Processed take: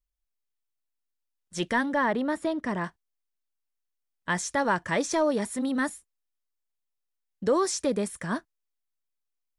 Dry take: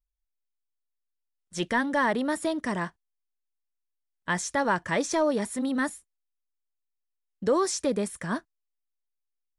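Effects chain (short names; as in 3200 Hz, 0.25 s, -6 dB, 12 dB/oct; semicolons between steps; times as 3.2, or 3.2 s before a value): 1.93–2.84 LPF 2600 Hz 6 dB/oct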